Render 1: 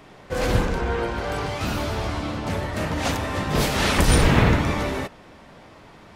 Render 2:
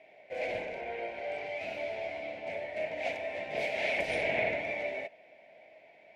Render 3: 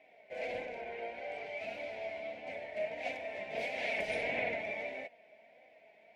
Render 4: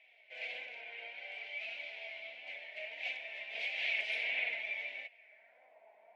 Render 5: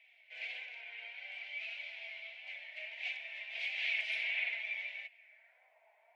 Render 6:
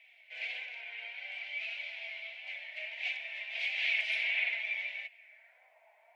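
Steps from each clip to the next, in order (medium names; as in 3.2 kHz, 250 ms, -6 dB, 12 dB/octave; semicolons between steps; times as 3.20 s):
two resonant band-passes 1.2 kHz, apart 1.8 oct
flange 1.6 Hz, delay 3.8 ms, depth 1 ms, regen +47%
band-pass sweep 3 kHz -> 980 Hz, 5.05–5.76 s; trim +7 dB
high-pass 1 kHz 12 dB/octave
band-stop 430 Hz, Q 12; trim +4 dB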